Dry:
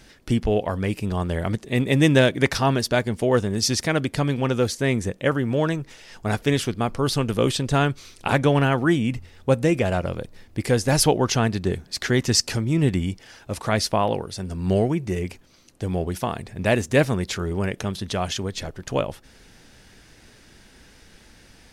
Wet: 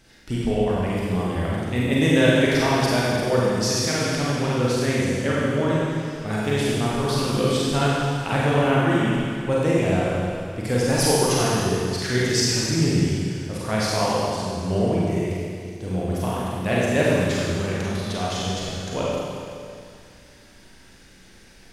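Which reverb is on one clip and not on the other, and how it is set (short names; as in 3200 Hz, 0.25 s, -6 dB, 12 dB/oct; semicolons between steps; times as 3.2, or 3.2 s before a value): Schroeder reverb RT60 2.3 s, combs from 33 ms, DRR -6.5 dB; gain -6.5 dB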